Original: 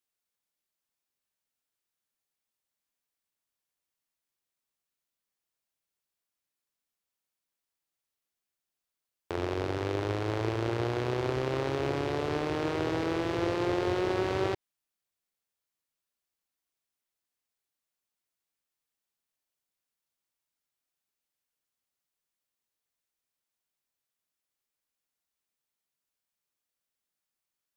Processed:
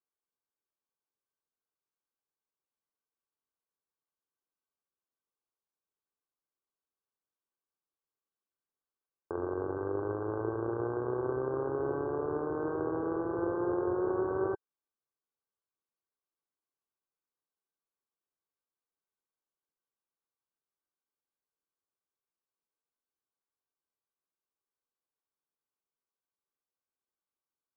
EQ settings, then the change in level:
Chebyshev low-pass with heavy ripple 1,600 Hz, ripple 9 dB
parametric band 840 Hz +6.5 dB 0.29 octaves
0.0 dB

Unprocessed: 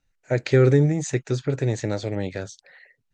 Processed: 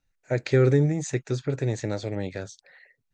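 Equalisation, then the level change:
notch filter 3,000 Hz, Q 22
−3.0 dB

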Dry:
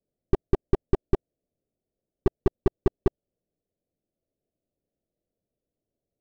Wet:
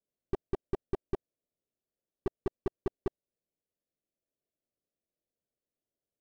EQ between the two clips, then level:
low-shelf EQ 230 Hz −6.5 dB
−7.5 dB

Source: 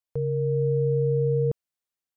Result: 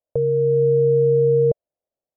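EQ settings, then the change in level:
low-pass with resonance 600 Hz, resonance Q 5
dynamic equaliser 240 Hz, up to −5 dB, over −32 dBFS, Q 0.83
+4.0 dB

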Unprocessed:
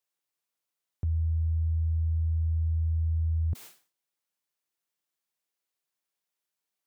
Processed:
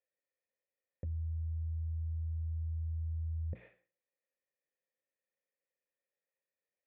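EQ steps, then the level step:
formant resonators in series e
parametric band 210 Hz +6 dB
mains-hum notches 60/120/180/240/300/360 Hz
+10.0 dB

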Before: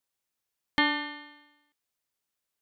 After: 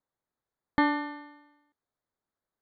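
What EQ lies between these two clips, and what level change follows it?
moving average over 16 samples
+4.5 dB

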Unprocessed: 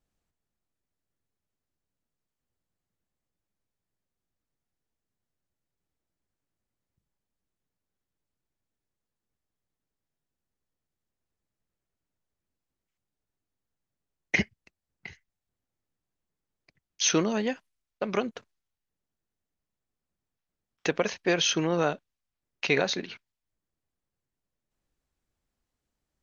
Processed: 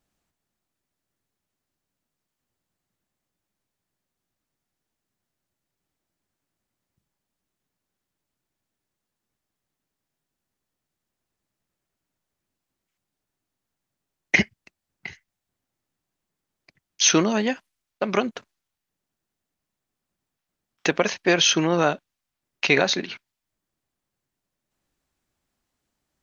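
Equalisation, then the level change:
low-shelf EQ 88 Hz −10 dB
parametric band 470 Hz −4.5 dB 0.31 octaves
+7.0 dB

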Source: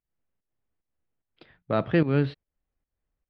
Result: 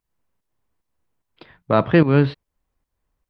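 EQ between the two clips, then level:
parametric band 1,000 Hz +7.5 dB 0.34 octaves
+7.5 dB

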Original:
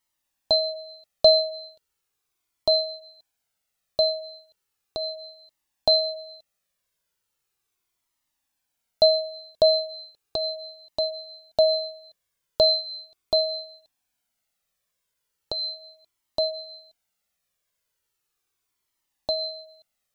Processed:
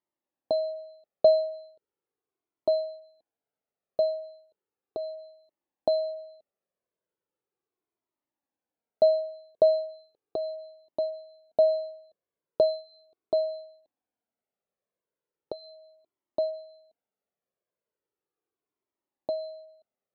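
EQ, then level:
resonant band-pass 390 Hz, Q 1.4
high-frequency loss of the air 84 metres
+3.5 dB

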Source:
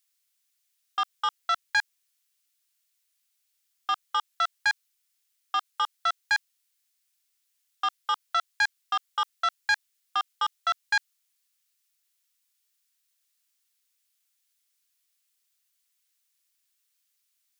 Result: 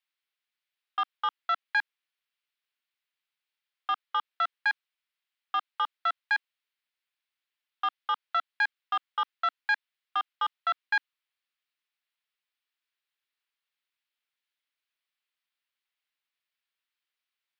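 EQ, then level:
Butterworth high-pass 280 Hz
high-frequency loss of the air 460 metres
high-shelf EQ 3,000 Hz +8.5 dB
0.0 dB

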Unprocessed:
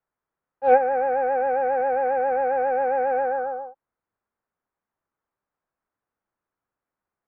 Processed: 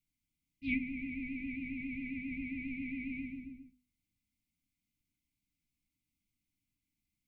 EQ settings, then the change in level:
linear-phase brick-wall band-stop 320–2,000 Hz
low-shelf EQ 71 Hz +7.5 dB
mains-hum notches 50/100/150/200/250 Hz
+5.0 dB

